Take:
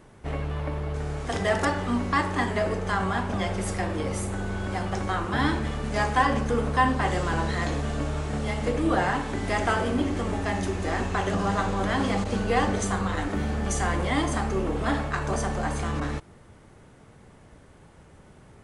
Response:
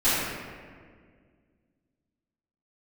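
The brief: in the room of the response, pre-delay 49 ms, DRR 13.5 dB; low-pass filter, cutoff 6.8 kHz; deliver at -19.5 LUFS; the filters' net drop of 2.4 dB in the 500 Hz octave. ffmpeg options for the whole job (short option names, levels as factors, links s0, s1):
-filter_complex "[0:a]lowpass=6800,equalizer=f=500:t=o:g=-3,asplit=2[s0][s1];[1:a]atrim=start_sample=2205,adelay=49[s2];[s1][s2]afir=irnorm=-1:irlink=0,volume=0.0316[s3];[s0][s3]amix=inputs=2:normalize=0,volume=2.51"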